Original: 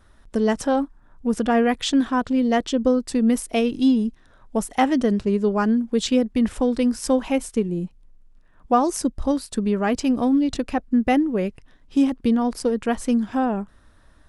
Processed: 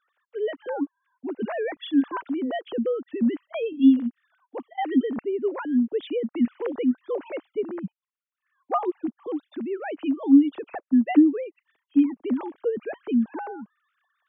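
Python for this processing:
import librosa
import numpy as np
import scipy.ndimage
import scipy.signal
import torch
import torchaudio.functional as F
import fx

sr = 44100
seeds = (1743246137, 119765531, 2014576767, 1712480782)

y = fx.sine_speech(x, sr)
y = y * 10.0 ** (-3.5 / 20.0)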